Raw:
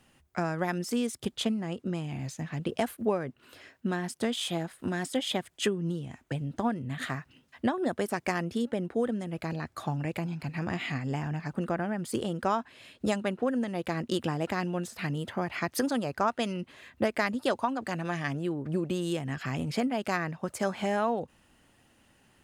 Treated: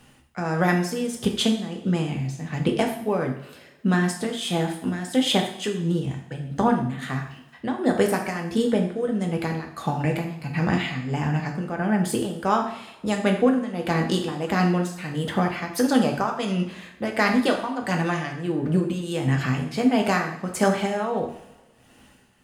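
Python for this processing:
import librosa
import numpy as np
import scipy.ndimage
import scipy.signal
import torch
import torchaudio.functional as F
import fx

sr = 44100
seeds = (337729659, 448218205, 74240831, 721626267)

y = x * (1.0 - 0.7 / 2.0 + 0.7 / 2.0 * np.cos(2.0 * np.pi * 1.5 * (np.arange(len(x)) / sr)))
y = fx.rev_double_slope(y, sr, seeds[0], early_s=0.56, late_s=1.6, knee_db=-18, drr_db=1.5)
y = y * 10.0 ** (8.0 / 20.0)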